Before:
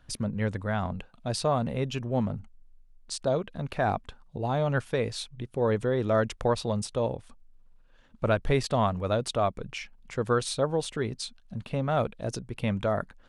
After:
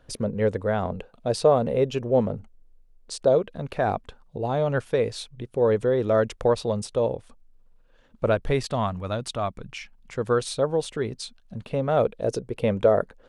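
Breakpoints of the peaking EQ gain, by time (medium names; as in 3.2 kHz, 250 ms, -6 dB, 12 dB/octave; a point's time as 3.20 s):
peaking EQ 470 Hz 0.92 oct
3.18 s +13.5 dB
3.59 s +6.5 dB
8.29 s +6.5 dB
8.93 s -4.5 dB
9.74 s -4.5 dB
10.35 s +4.5 dB
11.39 s +4.5 dB
12.45 s +15 dB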